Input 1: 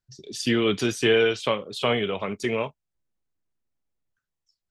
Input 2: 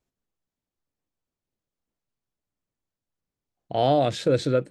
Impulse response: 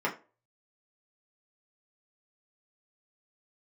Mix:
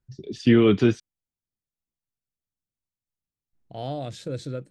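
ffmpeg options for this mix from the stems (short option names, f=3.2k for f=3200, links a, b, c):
-filter_complex "[0:a]lowpass=2.2k,equalizer=f=330:w=1.5:g=3.5,volume=1dB,asplit=3[a][b][c];[a]atrim=end=1,asetpts=PTS-STARTPTS,afade=t=out:st=0.996:d=0.004:c=hsin[d];[b]atrim=start=1:end=3.53,asetpts=PTS-STARTPTS,volume=0[e];[c]atrim=start=3.53,asetpts=PTS-STARTPTS,afade=t=in:d=0.004:c=hsin[f];[d][e][f]concat=n=3:v=0:a=1[g];[1:a]volume=-13dB[h];[g][h]amix=inputs=2:normalize=0,bass=f=250:g=8,treble=f=4k:g=7"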